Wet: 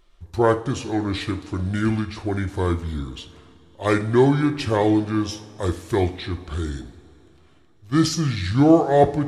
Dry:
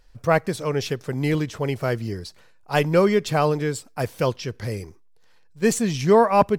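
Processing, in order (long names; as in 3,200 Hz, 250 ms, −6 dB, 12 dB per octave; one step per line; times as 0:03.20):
speed change −29%
coupled-rooms reverb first 0.43 s, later 3.6 s, from −18 dB, DRR 7.5 dB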